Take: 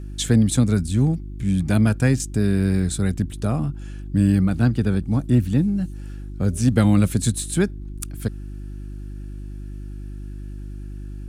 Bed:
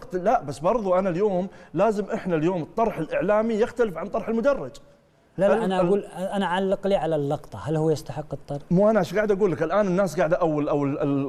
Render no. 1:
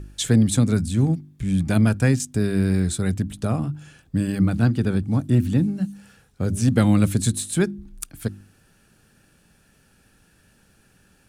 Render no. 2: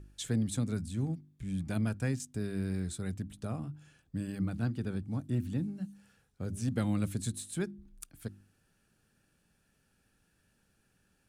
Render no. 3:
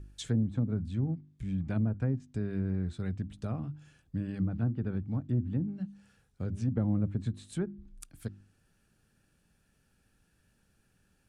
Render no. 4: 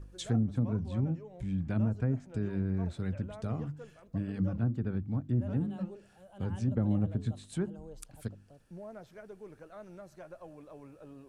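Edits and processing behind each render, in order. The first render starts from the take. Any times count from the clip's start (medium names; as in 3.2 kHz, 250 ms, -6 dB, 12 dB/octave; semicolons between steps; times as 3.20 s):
de-hum 50 Hz, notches 7
trim -14 dB
low-pass that closes with the level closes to 780 Hz, closed at -27.5 dBFS; bass shelf 130 Hz +5.5 dB
add bed -27 dB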